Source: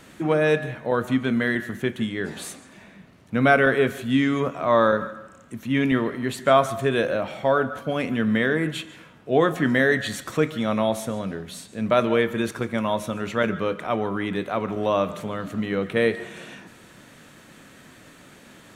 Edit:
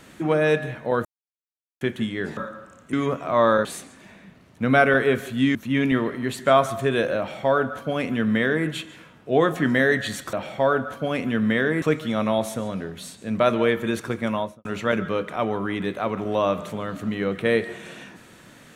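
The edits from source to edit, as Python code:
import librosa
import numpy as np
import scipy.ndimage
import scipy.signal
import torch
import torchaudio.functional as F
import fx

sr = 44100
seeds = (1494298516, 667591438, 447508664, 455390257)

y = fx.studio_fade_out(x, sr, start_s=12.82, length_s=0.34)
y = fx.edit(y, sr, fx.silence(start_s=1.05, length_s=0.76),
    fx.swap(start_s=2.37, length_s=1.9, other_s=4.99, other_length_s=0.56),
    fx.duplicate(start_s=7.18, length_s=1.49, to_s=10.33), tone=tone)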